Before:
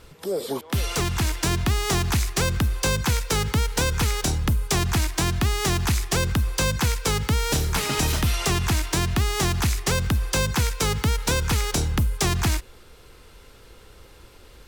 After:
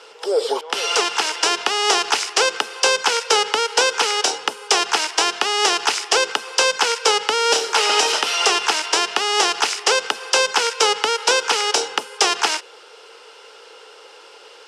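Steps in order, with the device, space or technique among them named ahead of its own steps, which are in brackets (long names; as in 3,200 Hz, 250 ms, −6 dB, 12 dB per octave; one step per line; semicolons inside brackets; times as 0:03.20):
phone speaker on a table (loudspeaker in its box 430–9,000 Hz, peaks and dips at 450 Hz +9 dB, 860 Hz +8 dB, 1,400 Hz +6 dB, 2,900 Hz +9 dB, 5,200 Hz +8 dB)
level +4.5 dB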